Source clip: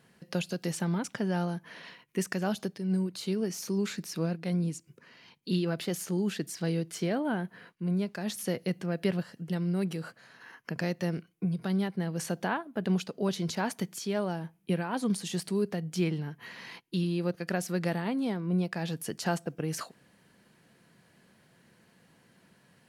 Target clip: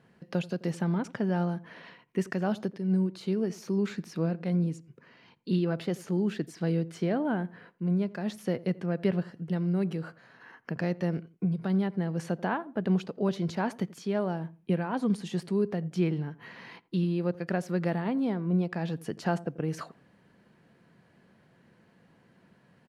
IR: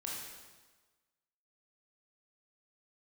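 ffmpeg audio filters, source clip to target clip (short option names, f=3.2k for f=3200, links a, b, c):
-filter_complex "[0:a]lowpass=f=1.6k:p=1,asplit=2[a][b];[b]adelay=85,lowpass=f=900:p=1,volume=-18dB,asplit=2[c][d];[d]adelay=85,lowpass=f=900:p=1,volume=0.28[e];[a][c][e]amix=inputs=3:normalize=0,volume=2dB"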